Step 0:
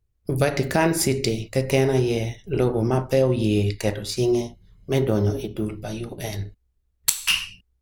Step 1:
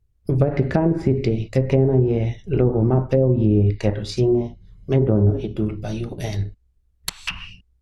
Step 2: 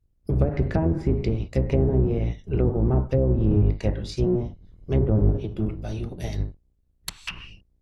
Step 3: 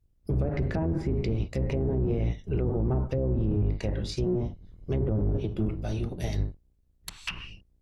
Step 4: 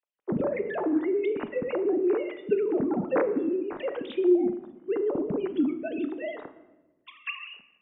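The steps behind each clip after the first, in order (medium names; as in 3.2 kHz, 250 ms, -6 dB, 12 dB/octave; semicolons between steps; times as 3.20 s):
low-pass that closes with the level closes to 590 Hz, closed at -15 dBFS; bass shelf 270 Hz +7 dB
octave divider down 1 oct, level +1 dB; trim -6 dB
peak limiter -19.5 dBFS, peak gain reduction 10 dB
formants replaced by sine waves; simulated room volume 600 m³, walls mixed, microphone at 0.42 m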